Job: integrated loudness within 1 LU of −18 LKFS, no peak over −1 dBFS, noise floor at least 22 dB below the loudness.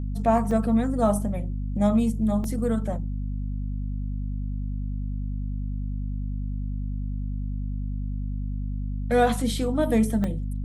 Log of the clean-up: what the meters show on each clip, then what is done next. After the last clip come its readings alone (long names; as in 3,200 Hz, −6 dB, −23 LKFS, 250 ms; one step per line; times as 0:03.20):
number of dropouts 3; longest dropout 2.2 ms; mains hum 50 Hz; hum harmonics up to 250 Hz; level of the hum −26 dBFS; integrated loudness −27.0 LKFS; sample peak −9.0 dBFS; target loudness −18.0 LKFS
→ repair the gap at 0:00.51/0:02.44/0:10.24, 2.2 ms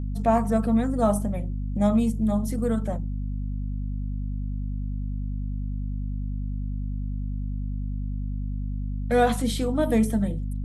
number of dropouts 0; mains hum 50 Hz; hum harmonics up to 250 Hz; level of the hum −26 dBFS
→ hum removal 50 Hz, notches 5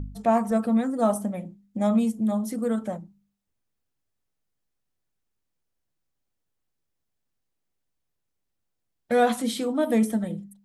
mains hum none found; integrated loudness −25.0 LKFS; sample peak −10.0 dBFS; target loudness −18.0 LKFS
→ level +7 dB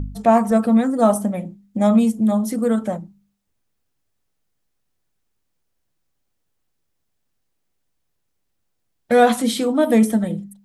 integrated loudness −18.0 LKFS; sample peak −3.0 dBFS; background noise floor −72 dBFS